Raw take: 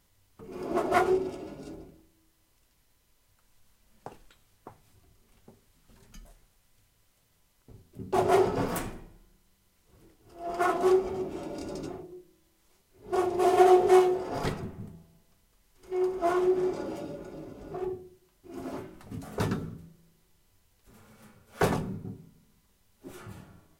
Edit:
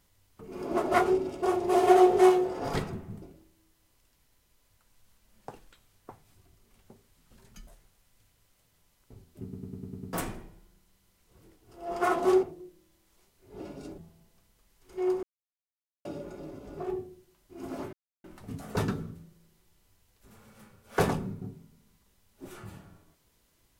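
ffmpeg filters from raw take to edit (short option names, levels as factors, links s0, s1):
-filter_complex "[0:a]asplit=16[s0][s1][s2][s3][s4][s5][s6][s7][s8][s9][s10][s11][s12][s13][s14][s15];[s0]atrim=end=1.422[s16];[s1]atrim=start=13.118:end=14.922[s17];[s2]atrim=start=1.798:end=8.112[s18];[s3]atrim=start=8.008:end=8.112[s19];[s4]atrim=start=8.008:end=8.112[s20];[s5]atrim=start=8.008:end=8.112[s21];[s6]atrim=start=8.008:end=8.112[s22];[s7]atrim=start=8.008:end=8.112[s23];[s8]atrim=start=8.008:end=8.112[s24];[s9]atrim=start=8.708:end=11.012[s25];[s10]atrim=start=11.948:end=13.122[s26];[s11]atrim=start=1.418:end=1.802[s27];[s12]atrim=start=14.918:end=16.17,asetpts=PTS-STARTPTS,afade=t=out:st=1.248:d=0.004:c=hsin[s28];[s13]atrim=start=16.17:end=16.99,asetpts=PTS-STARTPTS,volume=0[s29];[s14]atrim=start=16.99:end=18.87,asetpts=PTS-STARTPTS,afade=t=in:d=0.004:c=hsin,afade=t=out:st=1.876:d=0.004:c=hsin,apad=pad_dur=0.31[s30];[s15]atrim=start=18.87,asetpts=PTS-STARTPTS,afade=t=in:d=0.004:c=hsin[s31];[s16][s17]acrossfade=d=0.004:c1=hsin:c2=hsin[s32];[s32][s18]acrossfade=d=0.004:c1=hsin:c2=hsin[s33];[s33][s19]acrossfade=d=0.004:c1=hsin:c2=hsin[s34];[s34][s20]acrossfade=d=0.004:c1=hsin:c2=hsin[s35];[s35][s21]acrossfade=d=0.004:c1=hsin:c2=hsin[s36];[s36][s22]acrossfade=d=0.004:c1=hsin:c2=hsin[s37];[s37][s23]acrossfade=d=0.004:c1=hsin:c2=hsin[s38];[s38][s24]acrossfade=d=0.004:c1=hsin:c2=hsin[s39];[s39][s25]acrossfade=d=0.004:c1=hsin:c2=hsin[s40];[s40][s26]acrossfade=d=0.004:c1=hsin:c2=hsin[s41];[s41][s27]acrossfade=d=0.004:c1=hsin:c2=hsin[s42];[s28][s29][s30][s31]concat=n=4:v=0:a=1[s43];[s42][s43]acrossfade=d=0.004:c1=hsin:c2=hsin"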